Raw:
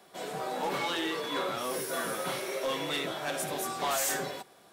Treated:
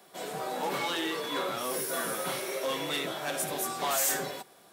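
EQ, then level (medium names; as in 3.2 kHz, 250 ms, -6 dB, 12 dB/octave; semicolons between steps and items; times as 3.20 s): high-pass 84 Hz; treble shelf 9.4 kHz +7 dB; 0.0 dB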